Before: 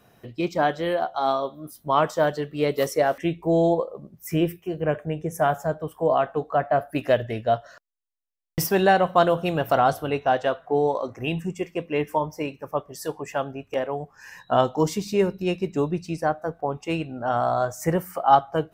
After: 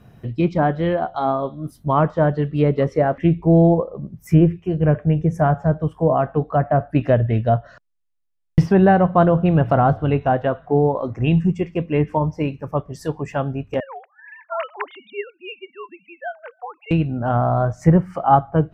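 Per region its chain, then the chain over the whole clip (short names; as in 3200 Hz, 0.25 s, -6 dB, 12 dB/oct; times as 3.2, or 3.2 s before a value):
13.8–16.91 sine-wave speech + HPF 980 Hz + tilt +1.5 dB/oct
whole clip: treble ducked by the level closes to 1700 Hz, closed at -18.5 dBFS; tone controls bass +14 dB, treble -6 dB; gain +2 dB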